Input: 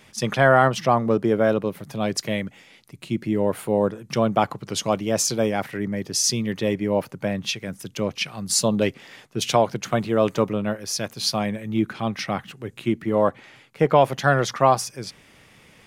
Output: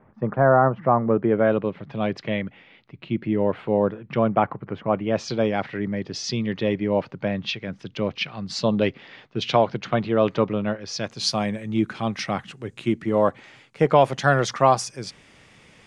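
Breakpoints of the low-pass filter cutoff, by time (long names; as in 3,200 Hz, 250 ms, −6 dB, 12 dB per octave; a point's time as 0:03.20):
low-pass filter 24 dB per octave
0:00.68 1,300 Hz
0:01.60 3,300 Hz
0:03.89 3,300 Hz
0:04.85 1,800 Hz
0:05.29 4,300 Hz
0:10.80 4,300 Hz
0:11.35 9,000 Hz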